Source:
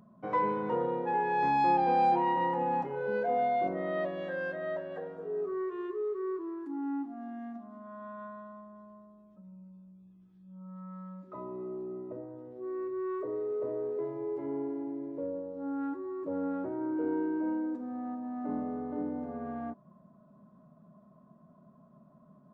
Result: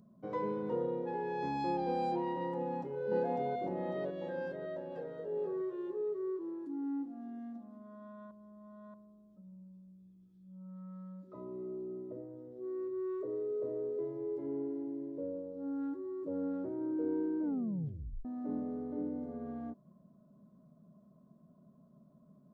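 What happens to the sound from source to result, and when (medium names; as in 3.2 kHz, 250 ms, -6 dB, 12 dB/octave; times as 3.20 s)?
2.56–3.00 s: echo throw 550 ms, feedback 60%, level -0.5 dB
4.47–5.13 s: echo throw 480 ms, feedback 30%, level -6.5 dB
8.31–8.94 s: reverse
17.42 s: tape stop 0.83 s
whole clip: high-order bell 1.4 kHz -9 dB 2.3 oct; trim -2.5 dB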